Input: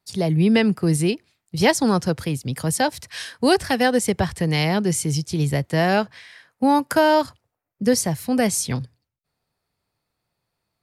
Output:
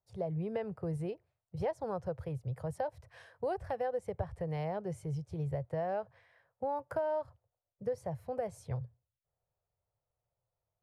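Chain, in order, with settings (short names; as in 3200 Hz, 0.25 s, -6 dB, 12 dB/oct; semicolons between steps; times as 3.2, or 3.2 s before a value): EQ curve 120 Hz 0 dB, 250 Hz -22 dB, 540 Hz +1 dB, 4400 Hz -27 dB; compressor 3:1, threshold -27 dBFS, peak gain reduction 8.5 dB; gain -6 dB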